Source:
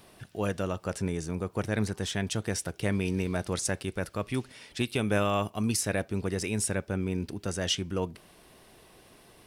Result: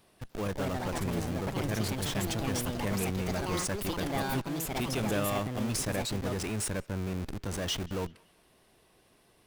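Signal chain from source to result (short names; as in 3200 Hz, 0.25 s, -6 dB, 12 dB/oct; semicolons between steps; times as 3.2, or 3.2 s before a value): in parallel at +2 dB: Schmitt trigger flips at -36 dBFS; on the sum: echoes that change speed 0.295 s, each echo +5 st, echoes 2; narrowing echo 0.185 s, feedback 44%, band-pass 2100 Hz, level -22.5 dB; gain -8.5 dB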